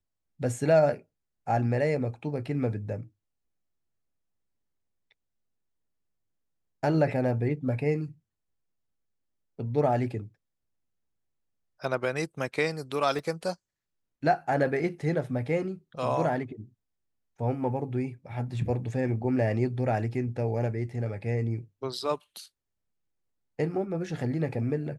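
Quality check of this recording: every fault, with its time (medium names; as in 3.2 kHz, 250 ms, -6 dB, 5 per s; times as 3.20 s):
13.19 s: dropout 2.4 ms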